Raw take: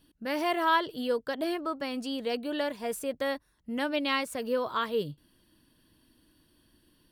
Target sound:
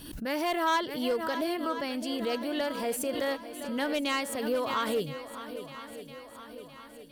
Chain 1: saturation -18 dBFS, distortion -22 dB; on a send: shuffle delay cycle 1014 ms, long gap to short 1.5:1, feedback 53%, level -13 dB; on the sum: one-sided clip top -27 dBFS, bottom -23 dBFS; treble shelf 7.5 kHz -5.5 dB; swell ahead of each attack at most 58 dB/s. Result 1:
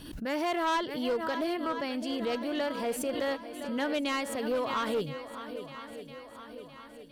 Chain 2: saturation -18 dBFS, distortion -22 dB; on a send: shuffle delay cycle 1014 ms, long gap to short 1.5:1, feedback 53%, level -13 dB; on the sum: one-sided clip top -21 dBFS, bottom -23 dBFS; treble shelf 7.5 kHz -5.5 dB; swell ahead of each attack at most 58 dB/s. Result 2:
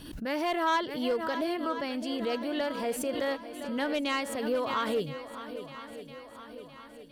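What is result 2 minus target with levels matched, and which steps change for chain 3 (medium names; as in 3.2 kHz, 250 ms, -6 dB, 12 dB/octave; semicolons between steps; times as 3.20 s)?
8 kHz band -3.5 dB
change: treble shelf 7.5 kHz +5 dB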